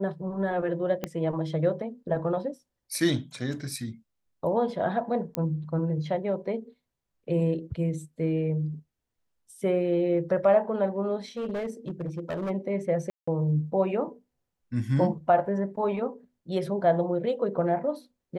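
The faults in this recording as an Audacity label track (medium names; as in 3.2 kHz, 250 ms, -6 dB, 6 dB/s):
1.040000	1.040000	pop -15 dBFS
5.350000	5.350000	pop -14 dBFS
11.370000	12.510000	clipped -27.5 dBFS
13.100000	13.280000	dropout 175 ms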